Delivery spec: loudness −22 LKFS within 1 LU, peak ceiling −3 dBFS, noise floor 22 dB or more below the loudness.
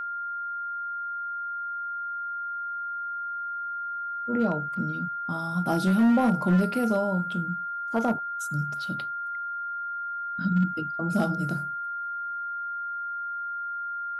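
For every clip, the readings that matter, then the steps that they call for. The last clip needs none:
share of clipped samples 0.6%; peaks flattened at −16.5 dBFS; interfering tone 1,400 Hz; level of the tone −30 dBFS; integrated loudness −28.5 LKFS; sample peak −16.5 dBFS; target loudness −22.0 LKFS
→ clipped peaks rebuilt −16.5 dBFS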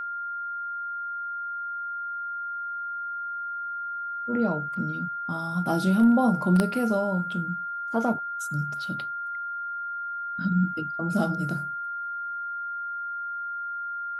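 share of clipped samples 0.0%; interfering tone 1,400 Hz; level of the tone −30 dBFS
→ notch filter 1,400 Hz, Q 30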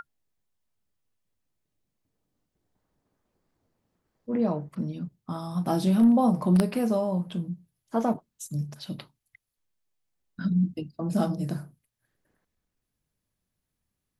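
interfering tone none found; integrated loudness −27.0 LKFS; sample peak −7.0 dBFS; target loudness −22.0 LKFS
→ level +5 dB
brickwall limiter −3 dBFS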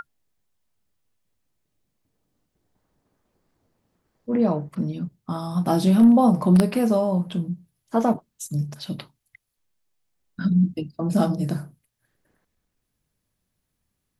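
integrated loudness −22.0 LKFS; sample peak −3.0 dBFS; background noise floor −78 dBFS

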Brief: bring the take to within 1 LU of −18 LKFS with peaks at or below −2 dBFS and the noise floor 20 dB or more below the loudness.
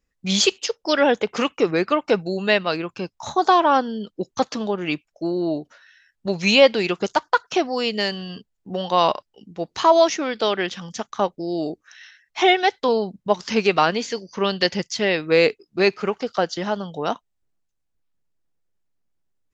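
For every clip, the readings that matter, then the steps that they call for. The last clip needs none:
integrated loudness −21.0 LKFS; sample peak −2.5 dBFS; target loudness −18.0 LKFS
→ level +3 dB
brickwall limiter −2 dBFS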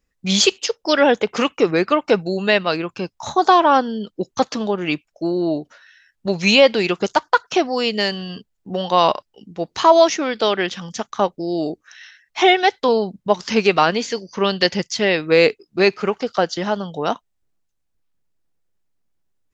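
integrated loudness −18.5 LKFS; sample peak −2.0 dBFS; background noise floor −72 dBFS

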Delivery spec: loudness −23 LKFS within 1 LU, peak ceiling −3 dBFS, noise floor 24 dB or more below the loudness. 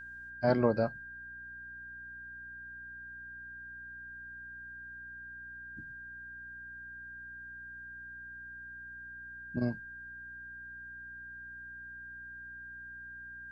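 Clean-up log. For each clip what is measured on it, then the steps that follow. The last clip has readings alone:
mains hum 60 Hz; hum harmonics up to 300 Hz; level of the hum −57 dBFS; interfering tone 1,600 Hz; level of the tone −44 dBFS; integrated loudness −40.5 LKFS; sample peak −13.5 dBFS; target loudness −23.0 LKFS
→ hum removal 60 Hz, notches 5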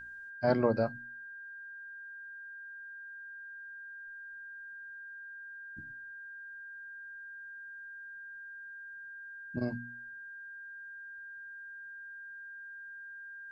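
mains hum none found; interfering tone 1,600 Hz; level of the tone −44 dBFS
→ notch filter 1,600 Hz, Q 30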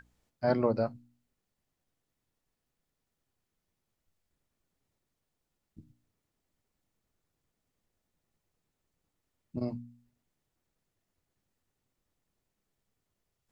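interfering tone none found; integrated loudness −32.5 LKFS; sample peak −15.0 dBFS; target loudness −23.0 LKFS
→ level +9.5 dB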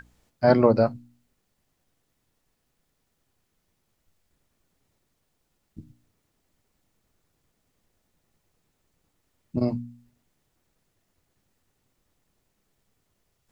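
integrated loudness −23.0 LKFS; sample peak −5.5 dBFS; background noise floor −75 dBFS

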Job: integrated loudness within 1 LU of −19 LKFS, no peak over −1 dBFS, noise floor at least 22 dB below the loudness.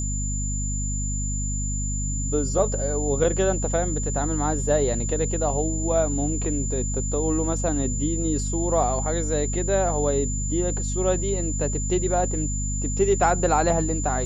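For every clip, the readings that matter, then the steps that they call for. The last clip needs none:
mains hum 50 Hz; hum harmonics up to 250 Hz; level of the hum −25 dBFS; interfering tone 7,100 Hz; level of the tone −30 dBFS; integrated loudness −24.0 LKFS; sample peak −7.5 dBFS; target loudness −19.0 LKFS
→ mains-hum notches 50/100/150/200/250 Hz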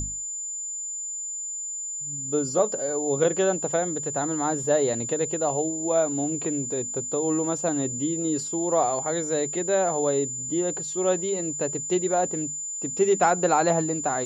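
mains hum none found; interfering tone 7,100 Hz; level of the tone −30 dBFS
→ notch filter 7,100 Hz, Q 30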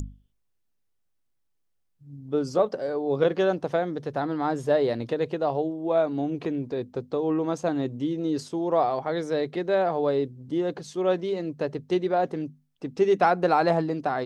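interfering tone none found; integrated loudness −26.0 LKFS; sample peak −8.5 dBFS; target loudness −19.0 LKFS
→ level +7 dB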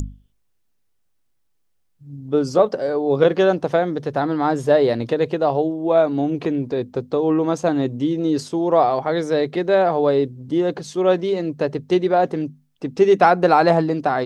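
integrated loudness −19.0 LKFS; sample peak −1.5 dBFS; background noise floor −66 dBFS

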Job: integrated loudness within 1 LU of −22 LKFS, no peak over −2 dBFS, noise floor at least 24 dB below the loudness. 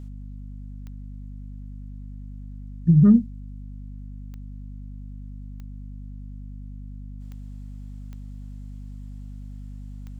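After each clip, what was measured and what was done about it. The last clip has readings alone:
number of clicks 6; mains hum 50 Hz; hum harmonics up to 250 Hz; level of the hum −35 dBFS; integrated loudness −18.5 LKFS; sample peak −7.0 dBFS; target loudness −22.0 LKFS
→ click removal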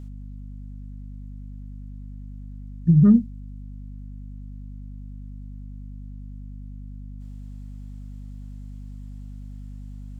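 number of clicks 0; mains hum 50 Hz; hum harmonics up to 250 Hz; level of the hum −35 dBFS
→ hum removal 50 Hz, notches 5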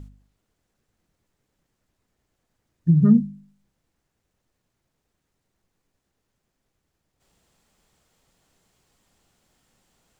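mains hum none found; integrated loudness −18.5 LKFS; sample peak −6.0 dBFS; target loudness −22.0 LKFS
→ level −3.5 dB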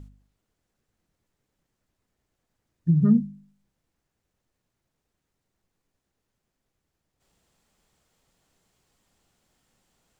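integrated loudness −22.0 LKFS; sample peak −9.5 dBFS; background noise floor −82 dBFS

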